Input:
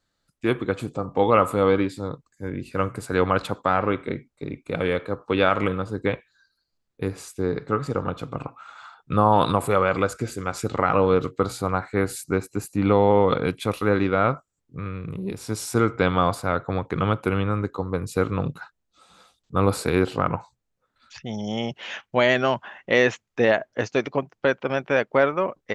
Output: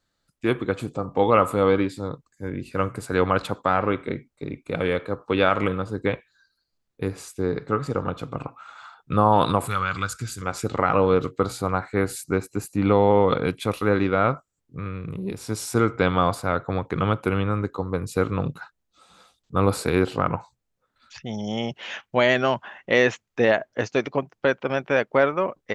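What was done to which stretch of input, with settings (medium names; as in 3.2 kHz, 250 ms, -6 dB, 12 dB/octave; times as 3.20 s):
9.67–10.42 s: FFT filter 120 Hz 0 dB, 550 Hz -18 dB, 1.4 kHz +1 dB, 2 kHz -4 dB, 3.7 kHz +4 dB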